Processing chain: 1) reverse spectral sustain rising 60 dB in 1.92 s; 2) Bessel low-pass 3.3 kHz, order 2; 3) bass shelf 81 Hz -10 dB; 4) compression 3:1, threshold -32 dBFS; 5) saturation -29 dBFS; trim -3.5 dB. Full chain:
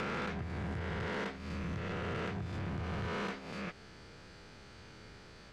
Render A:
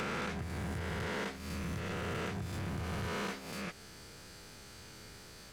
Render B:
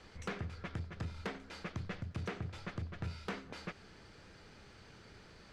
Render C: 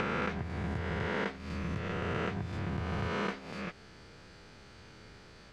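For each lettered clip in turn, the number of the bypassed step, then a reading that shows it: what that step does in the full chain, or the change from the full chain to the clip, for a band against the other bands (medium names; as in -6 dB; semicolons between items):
2, 8 kHz band +10.0 dB; 1, 8 kHz band +4.5 dB; 5, distortion -12 dB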